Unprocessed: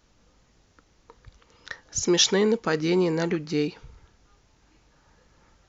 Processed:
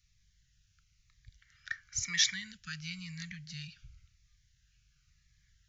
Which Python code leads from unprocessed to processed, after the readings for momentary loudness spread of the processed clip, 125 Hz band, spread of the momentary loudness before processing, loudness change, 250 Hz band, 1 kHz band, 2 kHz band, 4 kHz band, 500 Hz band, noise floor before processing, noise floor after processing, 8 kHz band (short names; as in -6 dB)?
17 LU, -13.5 dB, 12 LU, -11.0 dB, -23.5 dB, -23.0 dB, -5.0 dB, -7.0 dB, under -40 dB, -63 dBFS, -72 dBFS, n/a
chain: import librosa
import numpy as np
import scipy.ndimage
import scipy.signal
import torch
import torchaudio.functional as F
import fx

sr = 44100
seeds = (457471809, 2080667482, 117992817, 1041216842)

y = scipy.signal.sosfilt(scipy.signal.cheby2(4, 50, [280.0, 860.0], 'bandstop', fs=sr, output='sos'), x)
y = fx.spec_box(y, sr, start_s=1.42, length_s=0.92, low_hz=250.0, high_hz=2400.0, gain_db=12)
y = fx.notch_cascade(y, sr, direction='falling', hz=0.97)
y = y * 10.0 ** (-6.5 / 20.0)